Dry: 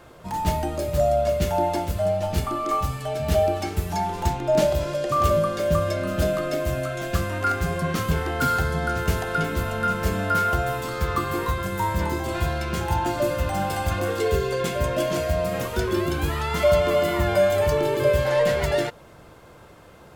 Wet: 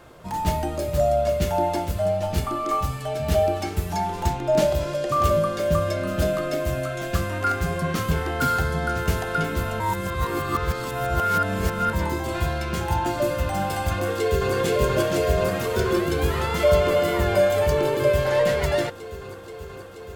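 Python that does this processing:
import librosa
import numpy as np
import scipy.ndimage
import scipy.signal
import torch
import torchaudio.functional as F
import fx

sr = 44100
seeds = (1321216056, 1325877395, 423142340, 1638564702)

y = fx.echo_throw(x, sr, start_s=13.93, length_s=0.61, ms=480, feedback_pct=85, wet_db=-1.5)
y = fx.edit(y, sr, fx.reverse_span(start_s=9.8, length_s=2.13), tone=tone)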